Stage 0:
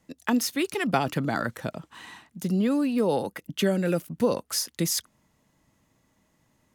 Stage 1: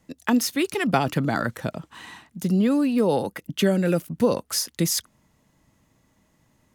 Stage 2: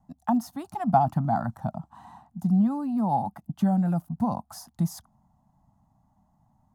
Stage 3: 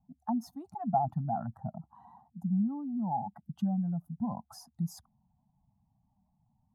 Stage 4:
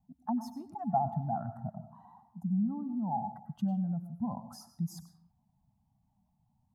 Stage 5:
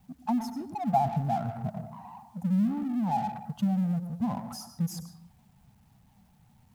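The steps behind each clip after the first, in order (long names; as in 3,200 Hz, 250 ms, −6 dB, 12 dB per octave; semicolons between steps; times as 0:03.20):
low-shelf EQ 170 Hz +3.5 dB; level +2.5 dB
drawn EQ curve 220 Hz 0 dB, 470 Hz −29 dB, 740 Hz +8 dB, 2,300 Hz −27 dB, 4,300 Hz −20 dB, 13,000 Hz −16 dB
expanding power law on the bin magnitudes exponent 1.6; level −7.5 dB
convolution reverb RT60 0.60 s, pre-delay 92 ms, DRR 10.5 dB; level −1 dB
mu-law and A-law mismatch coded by mu; level +3.5 dB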